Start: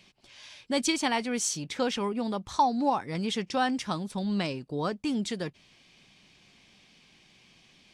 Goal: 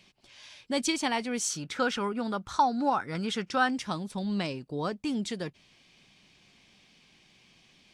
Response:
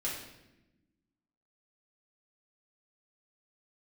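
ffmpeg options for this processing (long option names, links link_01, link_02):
-filter_complex "[0:a]asettb=1/sr,asplit=3[link_01][link_02][link_03];[link_01]atrim=end=1.504[link_04];[link_02]atrim=start=1.5:end=3.68,asetpts=PTS-STARTPTS,afade=type=in:duration=0.004:curve=qsin,afade=type=out:start_time=2.176:duration=0.004:curve=qsin,equalizer=frequency=1400:width=3.9:gain=13[link_05];[link_03]atrim=start=3.676[link_06];[link_04][link_05]acrossfade=duration=0.004:curve1=hsin:curve2=qsin[link_07];[link_07][link_06]acrossfade=duration=0.004:curve1=qsin:curve2=hsin,volume=-1.5dB"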